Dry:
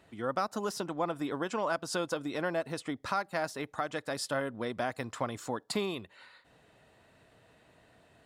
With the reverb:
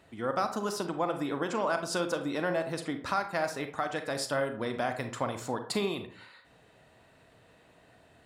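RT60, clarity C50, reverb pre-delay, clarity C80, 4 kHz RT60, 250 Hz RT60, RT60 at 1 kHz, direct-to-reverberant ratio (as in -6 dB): 0.50 s, 9.5 dB, 33 ms, 14.0 dB, 0.30 s, 0.60 s, 0.50 s, 7.0 dB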